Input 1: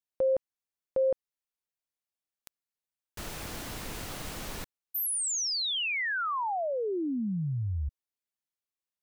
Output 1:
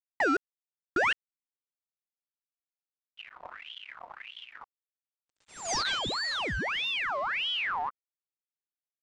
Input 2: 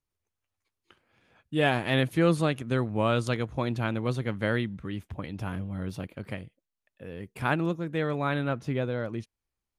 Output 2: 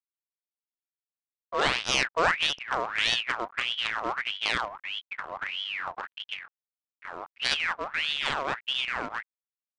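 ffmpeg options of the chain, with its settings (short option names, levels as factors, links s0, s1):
-filter_complex "[0:a]highpass=f=67:w=0.5412,highpass=f=67:w=1.3066,afwtdn=0.0224,equalizer=f=3100:w=1.3:g=5,asplit=2[s0][s1];[s1]acompressor=threshold=0.0158:ratio=8:attack=14:release=332:knee=1:detection=rms,volume=1[s2];[s0][s2]amix=inputs=2:normalize=0,acrusher=bits=2:mode=log:mix=0:aa=0.000001,adynamicsmooth=sensitivity=3:basefreq=650,aresample=16000,aeval=exprs='sgn(val(0))*max(abs(val(0))-0.00501,0)':c=same,aresample=44100,aeval=exprs='val(0)*sin(2*PI*2000*n/s+2000*0.6/1.6*sin(2*PI*1.6*n/s))':c=same"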